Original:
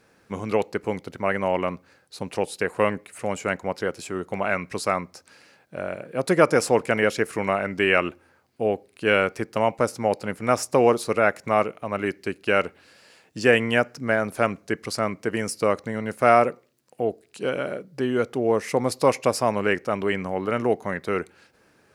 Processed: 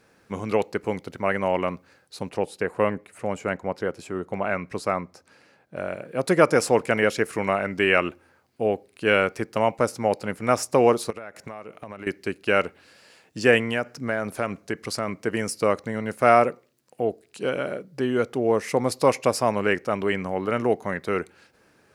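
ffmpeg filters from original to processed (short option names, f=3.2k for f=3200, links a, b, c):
-filter_complex "[0:a]asettb=1/sr,asplit=3[a][b][c];[a]atrim=end=2.294[d];[b]atrim=start=2.29:end=5.76,asetpts=PTS-STARTPTS,afade=t=in:d=0.004:c=qsin,afade=t=out:st=3.466:d=0.004:c=qsin,highshelf=f=2.1k:g=-8[e];[c]atrim=start=5.756[f];[d][e]acrossfade=d=0.004:c1=hsin:c2=qsin[g];[g][f]acrossfade=d=0.004:c1=qsin:c2=hsin,asettb=1/sr,asplit=3[h][i][j];[h]atrim=end=11.104[k];[i]atrim=start=11.1:end=12.07,asetpts=PTS-STARTPTS,afade=t=in:d=0.004:c=qsin,afade=t=out:st=0.966:d=0.004:c=qsin,acompressor=threshold=-32dB:ratio=20:attack=3.2:release=140:knee=1:detection=peak[l];[j]atrim=start=12.066[m];[k][l]acrossfade=d=0.004:c1=hsin:c2=qsin[n];[n][m]acrossfade=d=0.004:c1=qsin:c2=hsin,asettb=1/sr,asplit=3[o][p][q];[o]atrim=end=13.604[r];[p]atrim=start=13.6:end=15.08,asetpts=PTS-STARTPTS,afade=t=in:d=0.004:c=qsin,afade=t=out:st=1.476:d=0.004:c=qsin,acompressor=threshold=-23dB:ratio=2:attack=3.2:release=140:knee=1:detection=peak[s];[q]atrim=start=15.076[t];[r][s]acrossfade=d=0.004:c1=hsin:c2=qsin[u];[u][t]acrossfade=d=0.004:c1=qsin:c2=hsin"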